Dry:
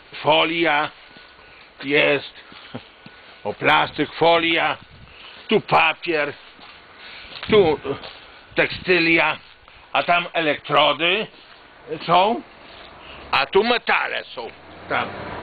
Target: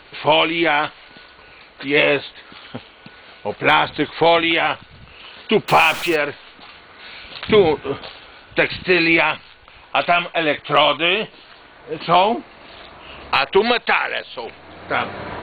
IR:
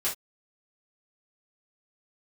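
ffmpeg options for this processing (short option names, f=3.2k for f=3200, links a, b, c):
-filter_complex "[0:a]asettb=1/sr,asplit=3[a][b][c];[a]atrim=end=5.684[d];[b]atrim=start=5.68:end=6.16,asetpts=PTS-STARTPTS,afade=t=in:d=0.004:c=qsin,afade=t=out:st=0.476:d=0.004:c=qsin,aeval=exprs='val(0)+0.5*0.0596*sgn(val(0))':c=same[e];[c]atrim=start=6.156[f];[d][e]acrossfade=d=0.004:c1=hsin:c2=qsin[g];[g][f]acrossfade=d=0.004:c1=qsin:c2=hsin,volume=1.5dB"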